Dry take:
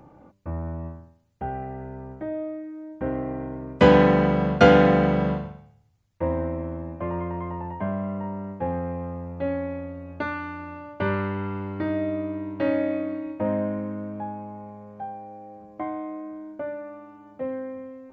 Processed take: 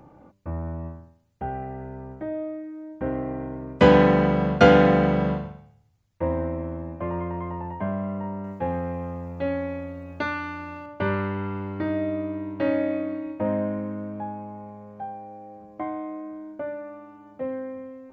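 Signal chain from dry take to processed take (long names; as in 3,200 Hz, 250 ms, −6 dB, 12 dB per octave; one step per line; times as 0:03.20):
0:08.44–0:10.86: high-shelf EQ 2,900 Hz +10.5 dB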